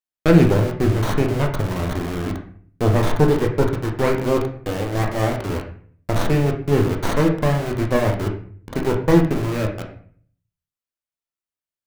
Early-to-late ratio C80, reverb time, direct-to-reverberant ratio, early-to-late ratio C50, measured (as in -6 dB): 11.0 dB, 0.50 s, 1.5 dB, 7.5 dB